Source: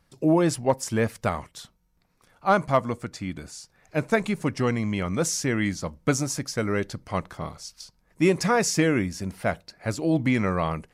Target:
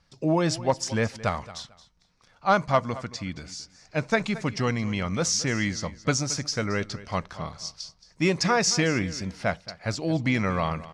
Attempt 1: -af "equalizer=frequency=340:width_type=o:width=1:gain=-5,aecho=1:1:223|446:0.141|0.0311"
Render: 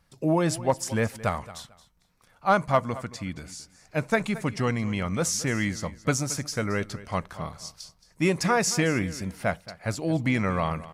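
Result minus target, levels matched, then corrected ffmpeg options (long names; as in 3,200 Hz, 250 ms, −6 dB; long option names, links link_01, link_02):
4,000 Hz band −4.5 dB
-af "lowpass=frequency=5400:width_type=q:width=1.9,equalizer=frequency=340:width_type=o:width=1:gain=-5,aecho=1:1:223|446:0.141|0.0311"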